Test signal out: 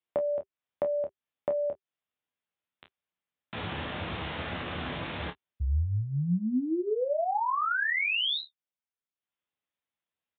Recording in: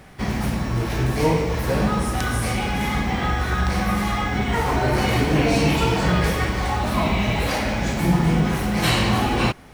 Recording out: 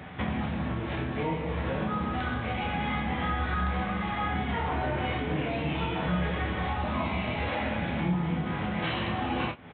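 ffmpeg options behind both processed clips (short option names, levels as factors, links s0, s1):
-filter_complex "[0:a]highpass=f=65:w=0.5412,highpass=f=65:w=1.3066,bandreject=f=390:w=12,acompressor=threshold=0.0251:ratio=5,asplit=2[s0][s1];[s1]adelay=28,volume=0.447[s2];[s0][s2]amix=inputs=2:normalize=0,asplit=2[s3][s4];[s4]aecho=0:1:12|23:0.355|0.178[s5];[s3][s5]amix=inputs=2:normalize=0,aresample=8000,aresample=44100,volume=1.33"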